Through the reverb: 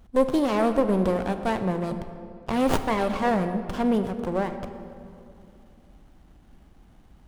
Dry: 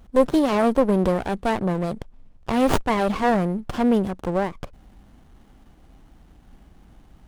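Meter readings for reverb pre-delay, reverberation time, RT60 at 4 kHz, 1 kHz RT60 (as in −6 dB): 14 ms, 2.5 s, 1.5 s, 2.4 s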